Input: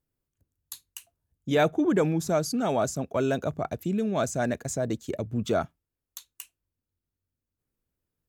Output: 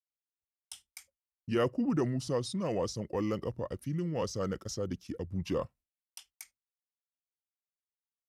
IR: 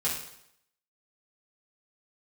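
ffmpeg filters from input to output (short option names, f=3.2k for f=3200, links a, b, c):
-af "asetrate=35002,aresample=44100,atempo=1.25992,agate=range=-33dB:threshold=-48dB:ratio=3:detection=peak,volume=-6.5dB"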